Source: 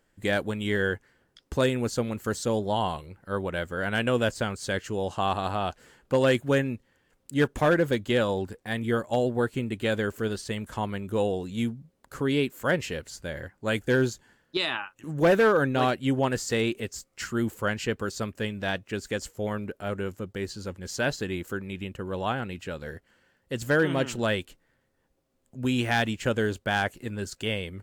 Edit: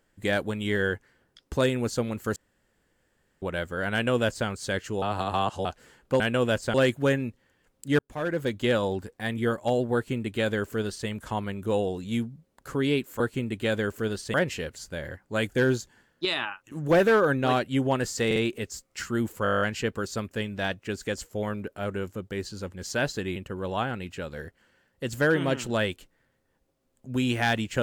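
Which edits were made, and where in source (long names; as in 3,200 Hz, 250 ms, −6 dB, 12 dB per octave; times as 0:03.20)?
0:02.36–0:03.42: fill with room tone
0:03.93–0:04.47: duplicate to 0:06.20
0:05.02–0:05.65: reverse
0:07.45–0:08.09: fade in
0:09.40–0:10.54: duplicate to 0:12.66
0:16.58: stutter 0.05 s, 3 plays
0:17.65: stutter 0.02 s, 10 plays
0:21.40–0:21.85: remove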